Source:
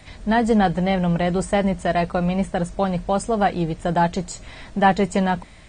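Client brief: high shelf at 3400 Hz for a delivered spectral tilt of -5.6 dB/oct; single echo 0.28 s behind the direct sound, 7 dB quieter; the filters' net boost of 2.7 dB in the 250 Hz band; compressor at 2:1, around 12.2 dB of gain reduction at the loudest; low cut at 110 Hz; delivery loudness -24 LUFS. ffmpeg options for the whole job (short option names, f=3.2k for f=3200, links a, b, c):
-af "highpass=110,equalizer=f=250:t=o:g=4.5,highshelf=f=3.4k:g=7,acompressor=threshold=-34dB:ratio=2,aecho=1:1:280:0.447,volume=5dB"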